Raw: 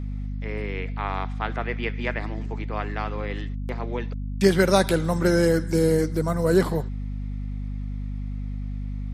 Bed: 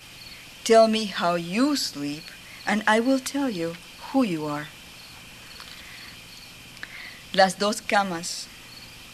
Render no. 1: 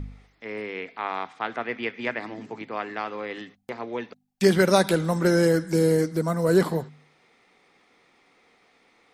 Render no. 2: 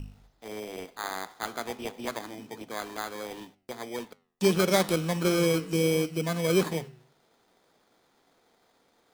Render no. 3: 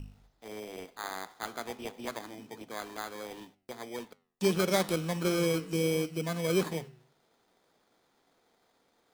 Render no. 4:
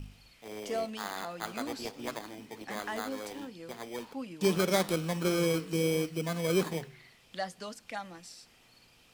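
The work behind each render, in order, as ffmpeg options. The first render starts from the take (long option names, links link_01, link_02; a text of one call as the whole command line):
ffmpeg -i in.wav -af "bandreject=frequency=50:width_type=h:width=4,bandreject=frequency=100:width_type=h:width=4,bandreject=frequency=150:width_type=h:width=4,bandreject=frequency=200:width_type=h:width=4,bandreject=frequency=250:width_type=h:width=4" out.wav
ffmpeg -i in.wav -filter_complex "[0:a]acrossover=split=2800[link_01][link_02];[link_01]acrusher=samples=16:mix=1:aa=0.000001[link_03];[link_03][link_02]amix=inputs=2:normalize=0,flanger=delay=8.5:depth=4:regen=-87:speed=1.5:shape=triangular" out.wav
ffmpeg -i in.wav -af "volume=-4dB" out.wav
ffmpeg -i in.wav -i bed.wav -filter_complex "[1:a]volume=-18dB[link_01];[0:a][link_01]amix=inputs=2:normalize=0" out.wav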